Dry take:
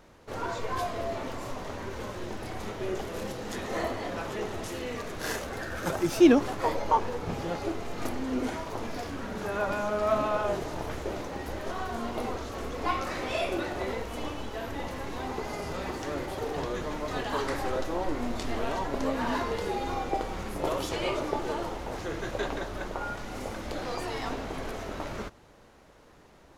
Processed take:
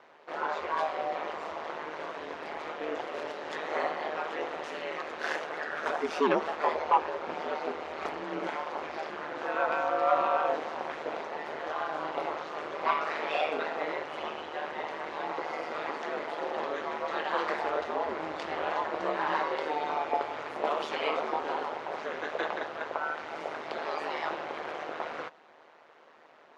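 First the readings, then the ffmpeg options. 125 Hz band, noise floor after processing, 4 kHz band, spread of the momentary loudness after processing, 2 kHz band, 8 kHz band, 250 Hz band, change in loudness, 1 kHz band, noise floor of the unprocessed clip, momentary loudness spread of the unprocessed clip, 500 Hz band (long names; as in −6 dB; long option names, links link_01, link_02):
−17.0 dB, −57 dBFS, −2.5 dB, 9 LU, +2.0 dB, below −10 dB, −10.0 dB, −1.0 dB, +2.5 dB, −55 dBFS, 9 LU, −1.5 dB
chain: -filter_complex "[0:a]asplit=2[link_01][link_02];[link_02]aeval=exprs='0.422*sin(PI/2*2.51*val(0)/0.422)':channel_layout=same,volume=-3.5dB[link_03];[link_01][link_03]amix=inputs=2:normalize=0,aeval=exprs='val(0)*sin(2*PI*77*n/s)':channel_layout=same,highpass=530,lowpass=2900,volume=-5dB"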